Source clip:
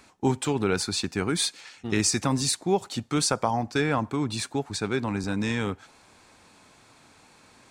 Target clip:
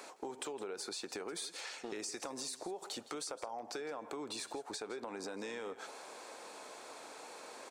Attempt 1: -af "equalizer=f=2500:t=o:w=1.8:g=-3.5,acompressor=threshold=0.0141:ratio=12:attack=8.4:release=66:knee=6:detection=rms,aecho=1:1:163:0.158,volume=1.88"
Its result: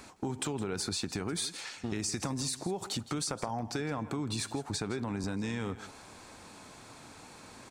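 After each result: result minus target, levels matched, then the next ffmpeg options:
compression: peak gain reduction -10 dB; 500 Hz band -5.0 dB
-af "equalizer=f=2500:t=o:w=1.8:g=-3.5,acompressor=threshold=0.00501:ratio=12:attack=8.4:release=66:knee=6:detection=rms,aecho=1:1:163:0.158,volume=1.88"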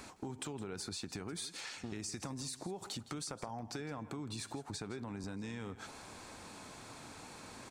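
500 Hz band -4.0 dB
-af "highpass=f=480:t=q:w=1.9,equalizer=f=2500:t=o:w=1.8:g=-3.5,acompressor=threshold=0.00501:ratio=12:attack=8.4:release=66:knee=6:detection=rms,aecho=1:1:163:0.158,volume=1.88"

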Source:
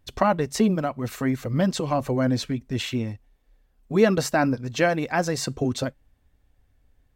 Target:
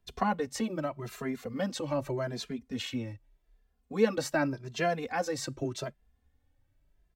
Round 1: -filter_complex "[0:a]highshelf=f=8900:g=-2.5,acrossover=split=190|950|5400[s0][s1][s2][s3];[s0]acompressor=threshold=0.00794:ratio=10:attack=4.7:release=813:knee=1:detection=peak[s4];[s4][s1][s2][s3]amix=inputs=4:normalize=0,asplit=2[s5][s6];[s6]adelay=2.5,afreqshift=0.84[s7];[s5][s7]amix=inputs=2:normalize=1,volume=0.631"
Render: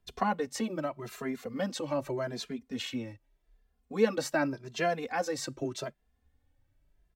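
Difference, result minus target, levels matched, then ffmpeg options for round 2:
compression: peak gain reduction +7.5 dB
-filter_complex "[0:a]highshelf=f=8900:g=-2.5,acrossover=split=190|950|5400[s0][s1][s2][s3];[s0]acompressor=threshold=0.0211:ratio=10:attack=4.7:release=813:knee=1:detection=peak[s4];[s4][s1][s2][s3]amix=inputs=4:normalize=0,asplit=2[s5][s6];[s6]adelay=2.5,afreqshift=0.84[s7];[s5][s7]amix=inputs=2:normalize=1,volume=0.631"

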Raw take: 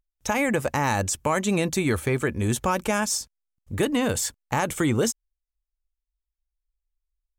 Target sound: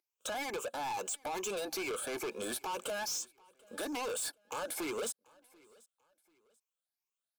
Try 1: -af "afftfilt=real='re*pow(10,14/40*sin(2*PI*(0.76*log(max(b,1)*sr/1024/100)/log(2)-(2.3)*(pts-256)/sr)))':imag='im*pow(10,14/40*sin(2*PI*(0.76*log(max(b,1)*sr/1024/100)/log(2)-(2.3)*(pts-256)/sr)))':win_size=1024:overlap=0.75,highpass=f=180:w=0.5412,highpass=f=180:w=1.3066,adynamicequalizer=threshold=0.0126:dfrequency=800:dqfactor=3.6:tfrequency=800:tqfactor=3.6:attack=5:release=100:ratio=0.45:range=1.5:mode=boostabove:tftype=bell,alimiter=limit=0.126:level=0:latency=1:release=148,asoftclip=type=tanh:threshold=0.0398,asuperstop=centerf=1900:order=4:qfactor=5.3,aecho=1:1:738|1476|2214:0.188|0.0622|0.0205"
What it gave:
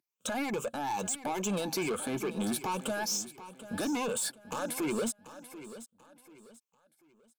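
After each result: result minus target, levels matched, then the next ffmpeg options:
echo-to-direct +11.5 dB; 250 Hz band +6.5 dB; saturation: distortion -4 dB
-af "afftfilt=real='re*pow(10,14/40*sin(2*PI*(0.76*log(max(b,1)*sr/1024/100)/log(2)-(2.3)*(pts-256)/sr)))':imag='im*pow(10,14/40*sin(2*PI*(0.76*log(max(b,1)*sr/1024/100)/log(2)-(2.3)*(pts-256)/sr)))':win_size=1024:overlap=0.75,highpass=f=180:w=0.5412,highpass=f=180:w=1.3066,adynamicequalizer=threshold=0.0126:dfrequency=800:dqfactor=3.6:tfrequency=800:tqfactor=3.6:attack=5:release=100:ratio=0.45:range=1.5:mode=boostabove:tftype=bell,alimiter=limit=0.126:level=0:latency=1:release=148,asoftclip=type=tanh:threshold=0.0398,asuperstop=centerf=1900:order=4:qfactor=5.3,aecho=1:1:738|1476:0.0501|0.0165"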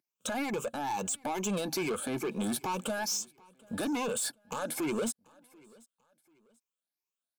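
250 Hz band +6.0 dB; saturation: distortion -4 dB
-af "afftfilt=real='re*pow(10,14/40*sin(2*PI*(0.76*log(max(b,1)*sr/1024/100)/log(2)-(2.3)*(pts-256)/sr)))':imag='im*pow(10,14/40*sin(2*PI*(0.76*log(max(b,1)*sr/1024/100)/log(2)-(2.3)*(pts-256)/sr)))':win_size=1024:overlap=0.75,highpass=f=380:w=0.5412,highpass=f=380:w=1.3066,adynamicequalizer=threshold=0.0126:dfrequency=800:dqfactor=3.6:tfrequency=800:tqfactor=3.6:attack=5:release=100:ratio=0.45:range=1.5:mode=boostabove:tftype=bell,alimiter=limit=0.126:level=0:latency=1:release=148,asoftclip=type=tanh:threshold=0.0398,asuperstop=centerf=1900:order=4:qfactor=5.3,aecho=1:1:738|1476:0.0501|0.0165"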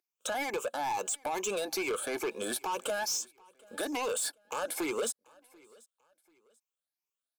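saturation: distortion -4 dB
-af "afftfilt=real='re*pow(10,14/40*sin(2*PI*(0.76*log(max(b,1)*sr/1024/100)/log(2)-(2.3)*(pts-256)/sr)))':imag='im*pow(10,14/40*sin(2*PI*(0.76*log(max(b,1)*sr/1024/100)/log(2)-(2.3)*(pts-256)/sr)))':win_size=1024:overlap=0.75,highpass=f=380:w=0.5412,highpass=f=380:w=1.3066,adynamicequalizer=threshold=0.0126:dfrequency=800:dqfactor=3.6:tfrequency=800:tqfactor=3.6:attack=5:release=100:ratio=0.45:range=1.5:mode=boostabove:tftype=bell,alimiter=limit=0.126:level=0:latency=1:release=148,asoftclip=type=tanh:threshold=0.0188,asuperstop=centerf=1900:order=4:qfactor=5.3,aecho=1:1:738|1476:0.0501|0.0165"

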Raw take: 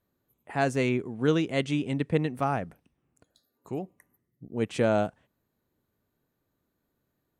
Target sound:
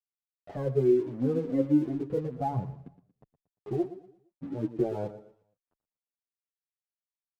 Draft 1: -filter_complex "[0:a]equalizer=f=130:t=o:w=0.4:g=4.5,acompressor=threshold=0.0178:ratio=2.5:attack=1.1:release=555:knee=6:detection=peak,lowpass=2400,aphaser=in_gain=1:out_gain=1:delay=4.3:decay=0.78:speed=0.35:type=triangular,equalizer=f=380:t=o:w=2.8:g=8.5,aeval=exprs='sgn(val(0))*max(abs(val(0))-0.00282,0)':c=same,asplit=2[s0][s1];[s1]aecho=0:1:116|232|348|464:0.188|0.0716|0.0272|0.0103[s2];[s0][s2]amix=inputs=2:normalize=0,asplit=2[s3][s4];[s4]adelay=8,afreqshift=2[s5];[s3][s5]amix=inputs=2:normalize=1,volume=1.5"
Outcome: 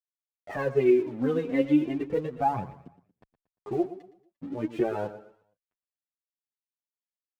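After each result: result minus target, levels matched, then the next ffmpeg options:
2 kHz band +13.0 dB; 125 Hz band -6.0 dB
-filter_complex "[0:a]equalizer=f=130:t=o:w=0.4:g=4.5,acompressor=threshold=0.0178:ratio=2.5:attack=1.1:release=555:knee=6:detection=peak,lowpass=620,aphaser=in_gain=1:out_gain=1:delay=4.3:decay=0.78:speed=0.35:type=triangular,equalizer=f=380:t=o:w=2.8:g=8.5,aeval=exprs='sgn(val(0))*max(abs(val(0))-0.00282,0)':c=same,asplit=2[s0][s1];[s1]aecho=0:1:116|232|348|464:0.188|0.0716|0.0272|0.0103[s2];[s0][s2]amix=inputs=2:normalize=0,asplit=2[s3][s4];[s4]adelay=8,afreqshift=2[s5];[s3][s5]amix=inputs=2:normalize=1,volume=1.5"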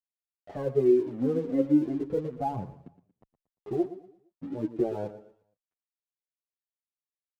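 125 Hz band -5.5 dB
-filter_complex "[0:a]equalizer=f=130:t=o:w=0.4:g=12.5,acompressor=threshold=0.0178:ratio=2.5:attack=1.1:release=555:knee=6:detection=peak,lowpass=620,aphaser=in_gain=1:out_gain=1:delay=4.3:decay=0.78:speed=0.35:type=triangular,equalizer=f=380:t=o:w=2.8:g=8.5,aeval=exprs='sgn(val(0))*max(abs(val(0))-0.00282,0)':c=same,asplit=2[s0][s1];[s1]aecho=0:1:116|232|348|464:0.188|0.0716|0.0272|0.0103[s2];[s0][s2]amix=inputs=2:normalize=0,asplit=2[s3][s4];[s4]adelay=8,afreqshift=2[s5];[s3][s5]amix=inputs=2:normalize=1,volume=1.5"

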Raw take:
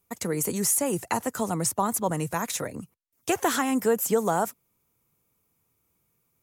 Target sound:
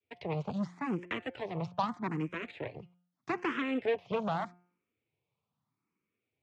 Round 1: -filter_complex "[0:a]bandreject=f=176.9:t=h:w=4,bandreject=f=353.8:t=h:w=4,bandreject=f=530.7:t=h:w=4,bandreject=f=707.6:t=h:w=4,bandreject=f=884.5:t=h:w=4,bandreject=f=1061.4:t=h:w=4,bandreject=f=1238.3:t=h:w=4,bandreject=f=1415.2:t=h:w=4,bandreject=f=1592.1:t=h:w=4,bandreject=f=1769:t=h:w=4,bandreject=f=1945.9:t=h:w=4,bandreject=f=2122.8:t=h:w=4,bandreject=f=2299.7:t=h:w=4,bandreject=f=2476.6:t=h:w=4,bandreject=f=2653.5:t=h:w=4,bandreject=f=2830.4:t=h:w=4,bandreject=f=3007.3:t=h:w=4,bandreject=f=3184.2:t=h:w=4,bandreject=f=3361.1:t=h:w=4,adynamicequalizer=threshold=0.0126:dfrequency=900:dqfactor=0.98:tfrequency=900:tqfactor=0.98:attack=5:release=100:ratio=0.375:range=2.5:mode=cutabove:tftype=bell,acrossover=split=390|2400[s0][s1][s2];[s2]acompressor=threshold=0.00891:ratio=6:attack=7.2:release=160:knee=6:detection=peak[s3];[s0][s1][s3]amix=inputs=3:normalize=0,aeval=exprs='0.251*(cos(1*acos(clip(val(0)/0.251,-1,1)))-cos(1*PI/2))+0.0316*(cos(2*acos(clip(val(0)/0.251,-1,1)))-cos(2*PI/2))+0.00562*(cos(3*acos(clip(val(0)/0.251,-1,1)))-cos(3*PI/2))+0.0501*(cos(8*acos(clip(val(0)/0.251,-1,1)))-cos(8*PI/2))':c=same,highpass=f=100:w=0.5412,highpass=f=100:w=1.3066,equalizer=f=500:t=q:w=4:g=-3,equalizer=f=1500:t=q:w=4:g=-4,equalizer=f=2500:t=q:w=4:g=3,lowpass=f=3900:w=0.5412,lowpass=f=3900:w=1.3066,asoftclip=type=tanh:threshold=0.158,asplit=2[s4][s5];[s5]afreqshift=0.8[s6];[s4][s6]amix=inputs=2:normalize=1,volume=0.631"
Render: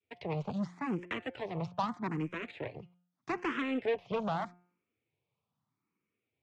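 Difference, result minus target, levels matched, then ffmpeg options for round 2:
saturation: distortion +13 dB
-filter_complex "[0:a]bandreject=f=176.9:t=h:w=4,bandreject=f=353.8:t=h:w=4,bandreject=f=530.7:t=h:w=4,bandreject=f=707.6:t=h:w=4,bandreject=f=884.5:t=h:w=4,bandreject=f=1061.4:t=h:w=4,bandreject=f=1238.3:t=h:w=4,bandreject=f=1415.2:t=h:w=4,bandreject=f=1592.1:t=h:w=4,bandreject=f=1769:t=h:w=4,bandreject=f=1945.9:t=h:w=4,bandreject=f=2122.8:t=h:w=4,bandreject=f=2299.7:t=h:w=4,bandreject=f=2476.6:t=h:w=4,bandreject=f=2653.5:t=h:w=4,bandreject=f=2830.4:t=h:w=4,bandreject=f=3007.3:t=h:w=4,bandreject=f=3184.2:t=h:w=4,bandreject=f=3361.1:t=h:w=4,adynamicequalizer=threshold=0.0126:dfrequency=900:dqfactor=0.98:tfrequency=900:tqfactor=0.98:attack=5:release=100:ratio=0.375:range=2.5:mode=cutabove:tftype=bell,acrossover=split=390|2400[s0][s1][s2];[s2]acompressor=threshold=0.00891:ratio=6:attack=7.2:release=160:knee=6:detection=peak[s3];[s0][s1][s3]amix=inputs=3:normalize=0,aeval=exprs='0.251*(cos(1*acos(clip(val(0)/0.251,-1,1)))-cos(1*PI/2))+0.0316*(cos(2*acos(clip(val(0)/0.251,-1,1)))-cos(2*PI/2))+0.00562*(cos(3*acos(clip(val(0)/0.251,-1,1)))-cos(3*PI/2))+0.0501*(cos(8*acos(clip(val(0)/0.251,-1,1)))-cos(8*PI/2))':c=same,highpass=f=100:w=0.5412,highpass=f=100:w=1.3066,equalizer=f=500:t=q:w=4:g=-3,equalizer=f=1500:t=q:w=4:g=-4,equalizer=f=2500:t=q:w=4:g=3,lowpass=f=3900:w=0.5412,lowpass=f=3900:w=1.3066,asoftclip=type=tanh:threshold=0.398,asplit=2[s4][s5];[s5]afreqshift=0.8[s6];[s4][s6]amix=inputs=2:normalize=1,volume=0.631"

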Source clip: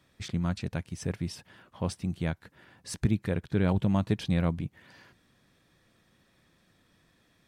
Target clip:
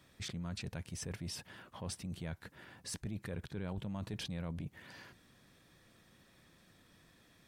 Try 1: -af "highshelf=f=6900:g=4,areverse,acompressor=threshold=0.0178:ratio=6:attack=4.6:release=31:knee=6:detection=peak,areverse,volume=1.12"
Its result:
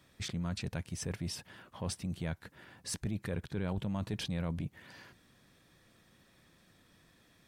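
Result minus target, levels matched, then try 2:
compression: peak gain reduction -5.5 dB
-af "highshelf=f=6900:g=4,areverse,acompressor=threshold=0.00841:ratio=6:attack=4.6:release=31:knee=6:detection=peak,areverse,volume=1.12"

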